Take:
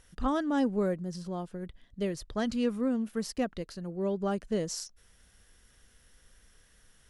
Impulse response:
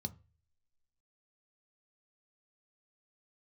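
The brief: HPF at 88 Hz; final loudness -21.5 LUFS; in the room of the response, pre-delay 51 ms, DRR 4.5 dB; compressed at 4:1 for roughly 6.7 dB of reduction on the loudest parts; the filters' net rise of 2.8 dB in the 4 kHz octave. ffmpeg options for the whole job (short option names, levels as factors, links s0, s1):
-filter_complex "[0:a]highpass=88,equalizer=f=4000:t=o:g=4,acompressor=threshold=0.0251:ratio=4,asplit=2[s0][s1];[1:a]atrim=start_sample=2205,adelay=51[s2];[s1][s2]afir=irnorm=-1:irlink=0,volume=0.794[s3];[s0][s3]amix=inputs=2:normalize=0,volume=3.16"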